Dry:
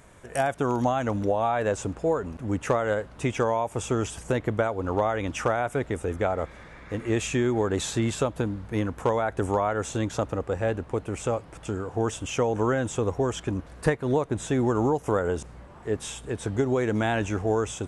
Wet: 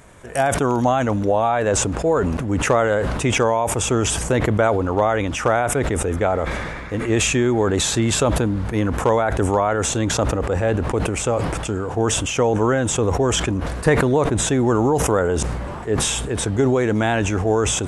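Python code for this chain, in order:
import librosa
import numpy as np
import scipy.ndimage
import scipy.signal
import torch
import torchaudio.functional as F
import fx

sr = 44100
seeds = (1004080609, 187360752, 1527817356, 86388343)

y = fx.sustainer(x, sr, db_per_s=27.0)
y = y * librosa.db_to_amplitude(5.5)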